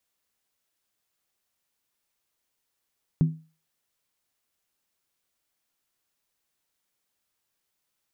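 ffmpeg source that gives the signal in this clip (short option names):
-f lavfi -i "aevalsrc='0.2*pow(10,-3*t/0.34)*sin(2*PI*159*t)+0.0562*pow(10,-3*t/0.269)*sin(2*PI*253.4*t)+0.0158*pow(10,-3*t/0.233)*sin(2*PI*339.6*t)+0.00447*pow(10,-3*t/0.224)*sin(2*PI*365.1*t)+0.00126*pow(10,-3*t/0.209)*sin(2*PI*421.8*t)':d=0.63:s=44100"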